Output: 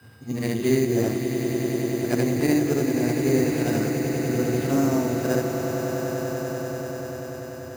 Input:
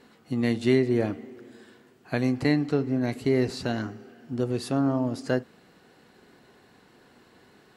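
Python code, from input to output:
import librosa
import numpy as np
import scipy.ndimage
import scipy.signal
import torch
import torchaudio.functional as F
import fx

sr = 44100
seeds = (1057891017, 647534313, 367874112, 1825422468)

p1 = fx.frame_reverse(x, sr, frame_ms=182.0)
p2 = fx.high_shelf(p1, sr, hz=4600.0, db=-8.5)
p3 = p2 + 10.0 ** (-60.0 / 20.0) * np.sin(2.0 * np.pi * 8200.0 * np.arange(len(p2)) / sr)
p4 = fx.sample_hold(p3, sr, seeds[0], rate_hz=6600.0, jitter_pct=0)
p5 = fx.dmg_noise_band(p4, sr, seeds[1], low_hz=85.0, high_hz=130.0, level_db=-54.0)
p6 = p5 + fx.echo_swell(p5, sr, ms=97, loudest=8, wet_db=-10.0, dry=0)
y = p6 * librosa.db_to_amplitude(4.5)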